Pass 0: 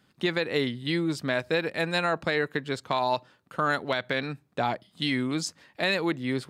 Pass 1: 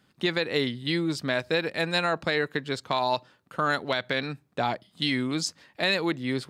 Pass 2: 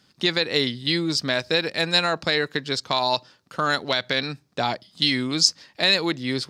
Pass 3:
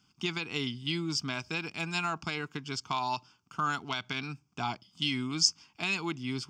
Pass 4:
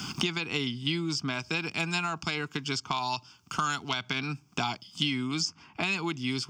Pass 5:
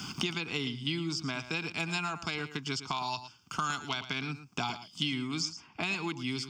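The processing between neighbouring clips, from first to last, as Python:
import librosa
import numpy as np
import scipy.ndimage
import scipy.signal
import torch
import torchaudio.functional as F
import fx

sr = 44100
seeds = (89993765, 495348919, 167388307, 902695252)

y1 = fx.dynamic_eq(x, sr, hz=4600.0, q=1.2, threshold_db=-45.0, ratio=4.0, max_db=4)
y2 = fx.peak_eq(y1, sr, hz=5200.0, db=12.5, octaves=0.94)
y2 = y2 * librosa.db_to_amplitude(2.0)
y3 = fx.fixed_phaser(y2, sr, hz=2700.0, stages=8)
y3 = y3 * librosa.db_to_amplitude(-5.0)
y4 = fx.band_squash(y3, sr, depth_pct=100)
y4 = y4 * librosa.db_to_amplitude(2.0)
y5 = y4 + 10.0 ** (-12.5 / 20.0) * np.pad(y4, (int(113 * sr / 1000.0), 0))[:len(y4)]
y5 = y5 * librosa.db_to_amplitude(-3.5)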